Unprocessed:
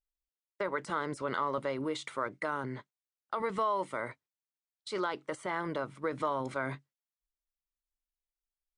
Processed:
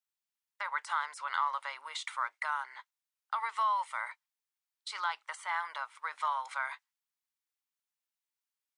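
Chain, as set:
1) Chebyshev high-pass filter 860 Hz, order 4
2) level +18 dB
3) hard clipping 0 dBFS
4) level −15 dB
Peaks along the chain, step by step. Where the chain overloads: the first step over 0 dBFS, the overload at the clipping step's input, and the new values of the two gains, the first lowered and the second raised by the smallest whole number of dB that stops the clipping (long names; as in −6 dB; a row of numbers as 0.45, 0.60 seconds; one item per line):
−21.5, −3.5, −3.5, −18.5 dBFS
no step passes full scale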